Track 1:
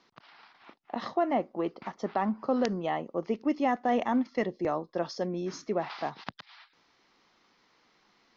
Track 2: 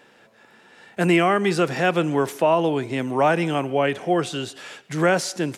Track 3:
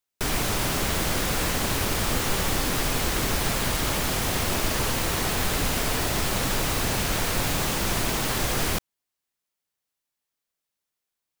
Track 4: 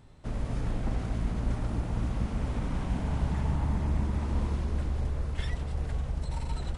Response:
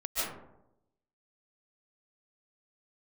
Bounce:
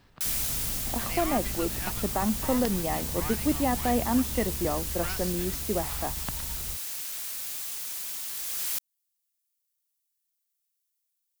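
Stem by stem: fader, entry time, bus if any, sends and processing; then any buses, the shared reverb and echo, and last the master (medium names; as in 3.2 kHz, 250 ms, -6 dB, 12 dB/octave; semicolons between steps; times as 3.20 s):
-1.5 dB, 0.00 s, no send, bass shelf 190 Hz +10.5 dB
-9.5 dB, 0.00 s, no send, steep high-pass 880 Hz; half-wave rectifier
+2.5 dB, 0.00 s, no send, pre-emphasis filter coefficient 0.97; auto duck -9 dB, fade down 1.15 s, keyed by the first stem
-7.5 dB, 0.00 s, no send, none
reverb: none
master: none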